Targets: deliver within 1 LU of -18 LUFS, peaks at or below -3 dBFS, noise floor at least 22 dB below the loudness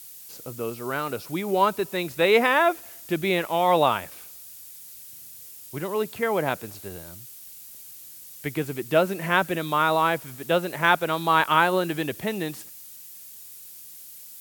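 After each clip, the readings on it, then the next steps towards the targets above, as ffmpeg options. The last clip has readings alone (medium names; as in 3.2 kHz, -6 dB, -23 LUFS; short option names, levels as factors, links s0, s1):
noise floor -44 dBFS; noise floor target -46 dBFS; loudness -24.0 LUFS; peak level -4.0 dBFS; loudness target -18.0 LUFS
-> -af "afftdn=nr=6:nf=-44"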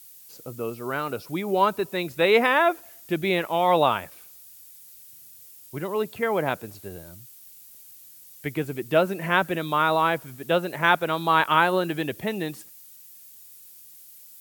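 noise floor -48 dBFS; loudness -24.0 LUFS; peak level -4.0 dBFS; loudness target -18.0 LUFS
-> -af "volume=2,alimiter=limit=0.708:level=0:latency=1"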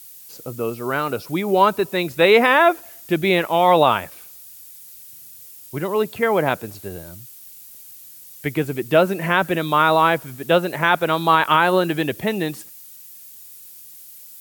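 loudness -18.5 LUFS; peak level -3.0 dBFS; noise floor -42 dBFS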